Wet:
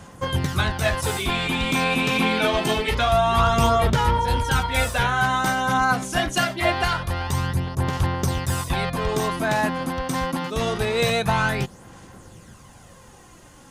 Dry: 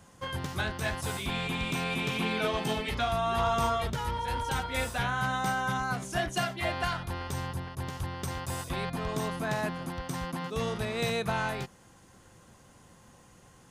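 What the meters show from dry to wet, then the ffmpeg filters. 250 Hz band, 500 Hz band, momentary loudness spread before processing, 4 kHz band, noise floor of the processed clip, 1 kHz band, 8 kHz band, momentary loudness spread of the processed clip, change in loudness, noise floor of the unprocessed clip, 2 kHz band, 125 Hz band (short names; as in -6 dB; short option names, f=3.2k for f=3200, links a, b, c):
+9.0 dB, +9.5 dB, 7 LU, +9.5 dB, -48 dBFS, +9.5 dB, +9.5 dB, 7 LU, +9.5 dB, -57 dBFS, +9.5 dB, +10.0 dB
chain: -af "aphaser=in_gain=1:out_gain=1:delay=3.9:decay=0.42:speed=0.25:type=sinusoidal,volume=8.5dB"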